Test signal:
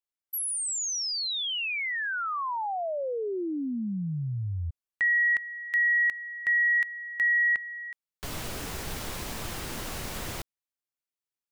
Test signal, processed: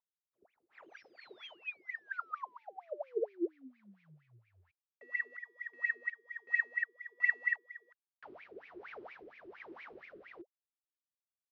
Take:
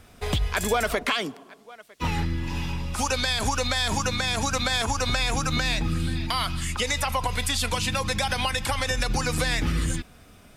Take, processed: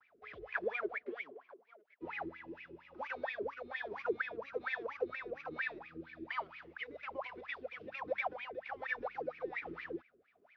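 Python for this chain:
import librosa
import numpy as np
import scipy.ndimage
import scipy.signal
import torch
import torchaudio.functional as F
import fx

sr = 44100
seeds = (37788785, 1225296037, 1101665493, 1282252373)

y = fx.cvsd(x, sr, bps=32000)
y = fx.vibrato(y, sr, rate_hz=0.44, depth_cents=24.0)
y = fx.dynamic_eq(y, sr, hz=440.0, q=4.4, threshold_db=-46.0, ratio=4.0, max_db=5)
y = fx.wah_lfo(y, sr, hz=4.3, low_hz=340.0, high_hz=2400.0, q=16.0)
y = fx.rotary(y, sr, hz=1.2)
y = scipy.signal.sosfilt(scipy.signal.butter(2, 4200.0, 'lowpass', fs=sr, output='sos'), y)
y = y * librosa.db_to_amplitude(4.5)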